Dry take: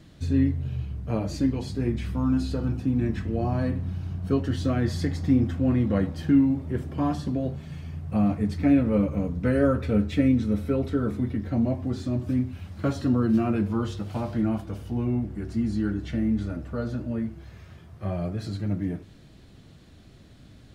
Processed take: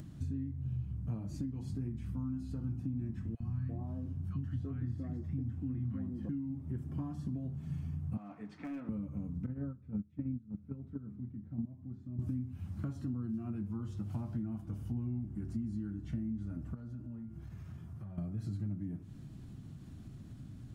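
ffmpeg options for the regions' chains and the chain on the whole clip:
-filter_complex "[0:a]asettb=1/sr,asplit=3[a][b][c];[a]atrim=end=3.354[d];[b]atrim=start=3.35:end=6.29,asetpts=PTS-STARTPTS,afade=t=in:d=0.004:c=qsin,afade=t=out:st=2.936:d=0.004:c=qsin,acrossover=split=2800[e][f];[f]acompressor=threshold=-59dB:ratio=4:attack=1:release=60[g];[e][g]amix=inputs=2:normalize=0,acrossover=split=230|1100[h][i][j];[h]adelay=50[k];[i]adelay=340[l];[k][l][j]amix=inputs=3:normalize=0,atrim=end_sample=129654[m];[c]atrim=start=6.286[n];[d][m]acrossfade=d=0.004:c1=hsin:c2=qsin[o];[o][n]acrossfade=d=0.004:c1=qsin:c2=hsin,asettb=1/sr,asplit=3[p][q][r];[p]atrim=end=8.174[s];[q]atrim=start=8.17:end=8.89,asetpts=PTS-STARTPTS,afade=t=in:d=0.004:c=qsin,afade=t=out:st=0.716:d=0.004:c=qsin,highpass=620,lowpass=3.4k,asoftclip=type=hard:threshold=-28dB[t];[r]atrim=start=8.886[u];[s][t]acrossfade=d=0.004:c1=hsin:c2=qsin[v];[v][u]acrossfade=d=0.004:c1=qsin:c2=hsin,asettb=1/sr,asplit=3[w][x][y];[w]atrim=end=9.464[z];[x]atrim=start=9.46:end=12.19,asetpts=PTS-STARTPTS,afade=t=in:d=0.004:c=qsin,afade=t=out:st=2.726:d=0.004:c=qsin,agate=range=-19dB:threshold=-21dB:ratio=16:release=100:detection=peak,lowpass=f=1.7k:p=1,equalizer=f=170:t=o:w=0.68:g=7.5[aa];[y]atrim=start=12.186[ab];[z][aa]acrossfade=d=0.004:c1=hsin:c2=qsin[ac];[ac][ab]acrossfade=d=0.004:c1=qsin:c2=hsin,asettb=1/sr,asplit=3[ad][ae][af];[ad]atrim=end=16.744[ag];[ae]atrim=start=16.74:end=18.18,asetpts=PTS-STARTPTS,afade=t=in:d=0.004:c=qsin,afade=t=out:st=1.436:d=0.004:c=qsin,volume=23dB,asoftclip=hard,volume=-23dB,acompressor=threshold=-41dB:ratio=16:attack=3.2:release=140:knee=1:detection=peak,aeval=exprs='val(0)+0.000282*sin(2*PI*1400*n/s)':c=same[ah];[af]atrim=start=18.176[ai];[ag][ah]acrossfade=d=0.004:c1=hsin:c2=qsin[aj];[aj][ai]acrossfade=d=0.004:c1=qsin:c2=hsin,acompressor=threshold=-34dB:ratio=10,equalizer=f=125:t=o:w=1:g=8,equalizer=f=250:t=o:w=1:g=5,equalizer=f=500:t=o:w=1:g=-10,equalizer=f=2k:t=o:w=1:g=-6,equalizer=f=4k:t=o:w=1:g=-9,acompressor=mode=upward:threshold=-37dB:ratio=2.5,volume=-5.5dB"

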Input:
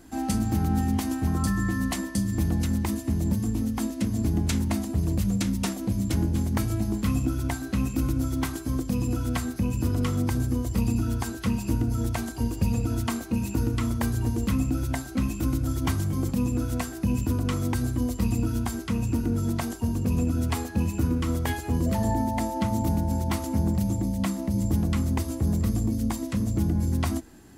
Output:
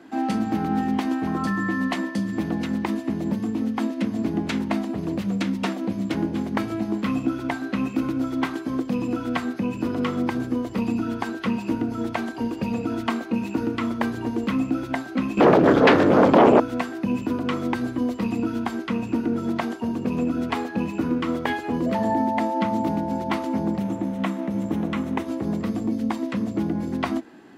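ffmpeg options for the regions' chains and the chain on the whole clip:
-filter_complex "[0:a]asettb=1/sr,asplit=3[a][b][c];[a]atrim=end=15.374[d];[b]atrim=start=15.37:end=16.6,asetpts=PTS-STARTPTS,afade=t=in:d=0.004:c=qsin,afade=t=out:st=1.226:d=0.004:c=qsin,acrossover=split=5400[e][f];[f]acompressor=threshold=-47dB:ratio=4:attack=1:release=60[g];[e][g]amix=inputs=2:normalize=0,aemphasis=mode=reproduction:type=cd,aeval=exprs='0.188*sin(PI/2*3.98*val(0)/0.188)':c=same[h];[c]atrim=start=16.596[i];[d][h]acrossfade=d=0.004:c1=hsin:c2=qsin[j];[j][i]acrossfade=d=0.004:c1=qsin:c2=hsin,asettb=1/sr,asplit=3[k][l][m];[k]atrim=end=23.804[n];[l]atrim=start=23.8:end=25.27,asetpts=PTS-STARTPTS,afade=t=in:d=0.004:c=qsin,afade=t=out:st=1.466:d=0.004:c=qsin,equalizer=f=4.7k:t=o:w=0.25:g=-11,aeval=exprs='sgn(val(0))*max(abs(val(0))-0.00501,0)':c=same[o];[m]atrim=start=25.266[p];[n][o]acrossfade=d=0.004:c1=hsin:c2=qsin[q];[q][p]acrossfade=d=0.004:c1=qsin:c2=hsin,highpass=f=110:p=1,acrossover=split=180 3800:gain=0.0794 1 0.0891[r][s][t];[r][s][t]amix=inputs=3:normalize=0,volume=6.5dB"

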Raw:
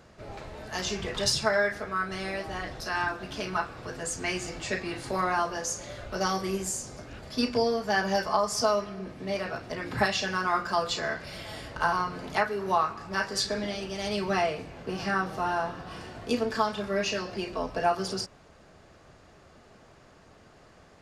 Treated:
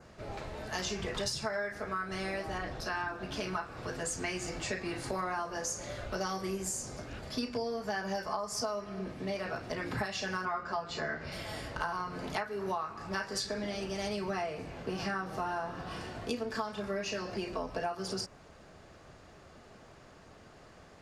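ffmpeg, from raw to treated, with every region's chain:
-filter_complex "[0:a]asettb=1/sr,asplit=3[a][b][c];[a]atrim=end=2.584[d];[b]atrim=start=2.58:end=3.33,asetpts=PTS-STARTPTS,afade=t=in:d=0.004:c=qsin,afade=t=out:st=0.746:d=0.004:c=qsin,highshelf=f=4.7k:g=-6.5,bandreject=f=2k:w=20[e];[c]atrim=start=3.326[f];[d][e]acrossfade=d=0.004:c1=hsin:c2=qsin[g];[g][f]acrossfade=d=0.004:c1=qsin:c2=hsin,asettb=1/sr,asplit=3[h][i][j];[h]atrim=end=10.454[k];[i]atrim=start=10.45:end=11.32,asetpts=PTS-STARTPTS,afade=t=in:d=0.004:c=qsin,afade=t=out:st=0.866:d=0.004:c=qsin,lowpass=6.9k,highshelf=f=4.5k:g=-8.5,asplit=2[l][m];[m]adelay=13,volume=-3.5dB[n];[l][n]amix=inputs=2:normalize=0,atrim=end_sample=38367[o];[j]atrim=start=11.316[p];[k][o]acrossfade=d=0.004:c1=hsin:c2=qsin[q];[q][p]acrossfade=d=0.004:c1=qsin:c2=hsin,adynamicequalizer=threshold=0.00355:dfrequency=3400:dqfactor=1.9:tfrequency=3400:tqfactor=1.9:attack=5:release=100:ratio=0.375:range=2.5:mode=cutabove:tftype=bell,acompressor=threshold=-32dB:ratio=6"

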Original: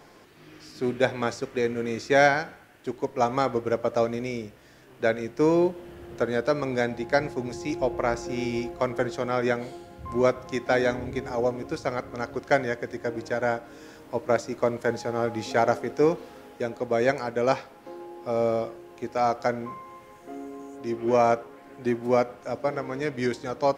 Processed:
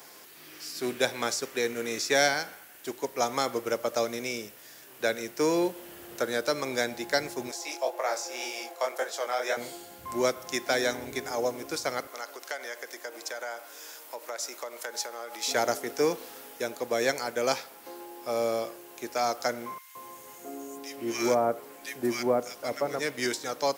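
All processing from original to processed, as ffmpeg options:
-filter_complex "[0:a]asettb=1/sr,asplit=3[a][b][c];[a]atrim=end=7.514[d];[b]atrim=start=7.51:end=9.57,asetpts=PTS-STARTPTS,afade=t=in:d=0.004:c=qsin,afade=t=out:st=2.056:d=0.004:c=qsin,flanger=delay=18.5:depth=6.8:speed=1.9,highpass=f=610:t=q:w=1.7[e];[c]atrim=start=9.566[f];[d][e]acrossfade=d=0.004:c1=hsin:c2=qsin[g];[g][f]acrossfade=d=0.004:c1=qsin:c2=hsin,asettb=1/sr,asplit=3[h][i][j];[h]atrim=end=12.074[k];[i]atrim=start=12.07:end=15.48,asetpts=PTS-STARTPTS,afade=t=in:d=0.004:c=qsin,afade=t=out:st=3.406:d=0.004:c=qsin,bandreject=f=1.7k:w=25,acompressor=threshold=-29dB:ratio=5:attack=3.2:release=140:knee=1:detection=peak,highpass=530[l];[j]atrim=start=15.476[m];[k][l]acrossfade=d=0.004:c1=hsin:c2=qsin[n];[n][m]acrossfade=d=0.004:c1=qsin:c2=hsin,asettb=1/sr,asplit=3[o][p][q];[o]atrim=end=19.784[r];[p]atrim=start=19.78:end=22.99,asetpts=PTS-STARTPTS,afade=t=in:d=0.004:c=qsin,afade=t=out:st=3.206:d=0.004:c=qsin,lowshelf=f=370:g=4.5,acrossover=split=1600[s][t];[s]adelay=170[u];[u][t]amix=inputs=2:normalize=0,atrim=end_sample=141561[v];[q]atrim=start=22.986[w];[r][v]acrossfade=d=0.004:c1=hsin:c2=qsin[x];[x][w]acrossfade=d=0.004:c1=qsin:c2=hsin,aemphasis=mode=production:type=riaa,acrossover=split=440|3000[y][z][aa];[z]acompressor=threshold=-29dB:ratio=2[ab];[y][ab][aa]amix=inputs=3:normalize=0"

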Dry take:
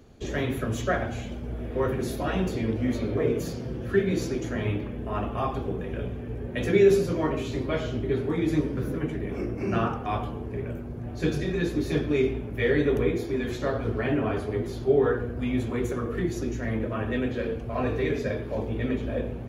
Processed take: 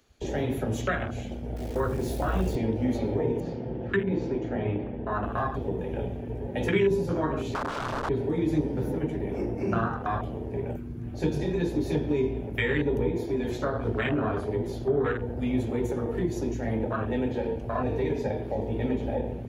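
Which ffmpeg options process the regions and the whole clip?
-filter_complex "[0:a]asettb=1/sr,asplit=3[a][b][c];[a]atrim=end=1.564[d];[b]atrim=start=1.56:end=2.56,asetpts=PTS-STARTPTS,afade=t=in:d=0.004:c=qsin,afade=t=out:st=0.996:d=0.004:c=qsin,asubboost=boost=8.5:cutoff=100,acrusher=bits=8:dc=4:mix=0:aa=0.000001[e];[c]atrim=start=2.556[f];[d][e]acrossfade=d=0.004:c1=hsin:c2=qsin[g];[g][f]acrossfade=d=0.004:c1=qsin:c2=hsin,asettb=1/sr,asplit=3[h][i][j];[h]atrim=end=3.404[k];[i]atrim=start=3.4:end=5.23,asetpts=PTS-STARTPTS,afade=t=in:d=0.004:c=qsin,afade=t=out:st=1.826:d=0.004:c=qsin,lowpass=2.6k,equalizer=f=72:w=1.4:g=-4[l];[j]atrim=start=5.226[m];[k][l]acrossfade=d=0.004:c1=hsin:c2=qsin[n];[n][m]acrossfade=d=0.004:c1=qsin:c2=hsin,asettb=1/sr,asplit=3[o][p][q];[o]atrim=end=7.544[r];[p]atrim=start=7.54:end=8.09,asetpts=PTS-STARTPTS,afade=t=in:d=0.004:c=qsin,afade=t=out:st=0.546:d=0.004:c=qsin,aecho=1:1:7.2:0.76,atrim=end_sample=24255,aeval=exprs='(mod(18.8*val(0)+1,2)-1)/18.8':c=same,adynamicsmooth=sensitivity=2.5:basefreq=2.2k[s];[q]atrim=start=8.086[t];[r][s]acrossfade=d=0.004:c1=hsin:c2=qsin[u];[u][t]acrossfade=d=0.004:c1=qsin:c2=hsin,afwtdn=0.0282,tiltshelf=f=860:g=-8,acrossover=split=280[v][w];[w]acompressor=threshold=-35dB:ratio=4[x];[v][x]amix=inputs=2:normalize=0,volume=7dB"

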